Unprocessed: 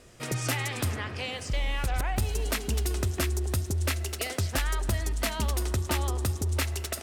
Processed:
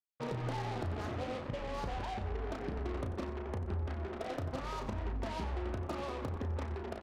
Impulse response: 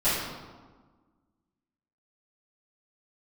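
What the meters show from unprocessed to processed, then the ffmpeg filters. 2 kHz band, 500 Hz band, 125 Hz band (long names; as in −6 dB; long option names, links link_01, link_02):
−13.0 dB, −3.5 dB, −9.5 dB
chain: -filter_complex "[0:a]afftfilt=real='re*pow(10,8/40*sin(2*PI*(0.93*log(max(b,1)*sr/1024/100)/log(2)-(-0.64)*(pts-256)/sr)))':imag='im*pow(10,8/40*sin(2*PI*(0.93*log(max(b,1)*sr/1024/100)/log(2)-(-0.64)*(pts-256)/sr)))':win_size=1024:overlap=0.75,highpass=frequency=140:poles=1,afftdn=noise_reduction=33:noise_floor=-51,lowpass=frequency=1100:width=0.5412,lowpass=frequency=1100:width=1.3066,alimiter=limit=-24dB:level=0:latency=1:release=110,acompressor=threshold=-36dB:ratio=16,acrusher=bits=6:mix=0:aa=0.5,asplit=2[link_01][link_02];[link_02]adelay=34,volume=-7dB[link_03];[link_01][link_03]amix=inputs=2:normalize=0,asplit=2[link_04][link_05];[link_05]asplit=3[link_06][link_07][link_08];[link_06]adelay=91,afreqshift=-150,volume=-12dB[link_09];[link_07]adelay=182,afreqshift=-300,volume=-21.6dB[link_10];[link_08]adelay=273,afreqshift=-450,volume=-31.3dB[link_11];[link_09][link_10][link_11]amix=inputs=3:normalize=0[link_12];[link_04][link_12]amix=inputs=2:normalize=0,volume=1dB"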